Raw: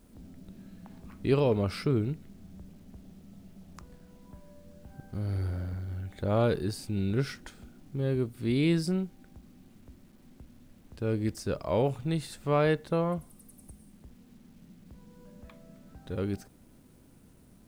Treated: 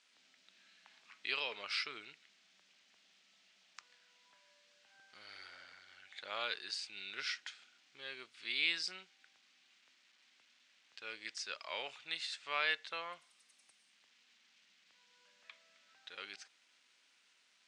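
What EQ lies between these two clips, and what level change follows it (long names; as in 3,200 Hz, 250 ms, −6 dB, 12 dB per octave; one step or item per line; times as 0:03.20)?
flat-topped band-pass 4,300 Hz, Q 0.71
high-frequency loss of the air 120 metres
+8.0 dB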